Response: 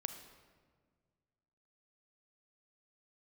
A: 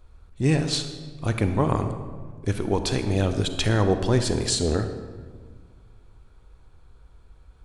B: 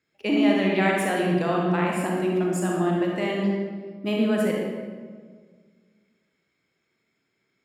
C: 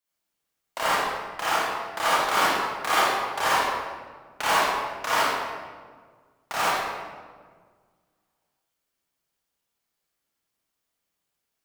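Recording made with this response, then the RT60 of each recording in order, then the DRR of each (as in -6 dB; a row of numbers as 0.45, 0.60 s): A; 1.7, 1.7, 1.6 s; 8.0, -2.0, -10.0 dB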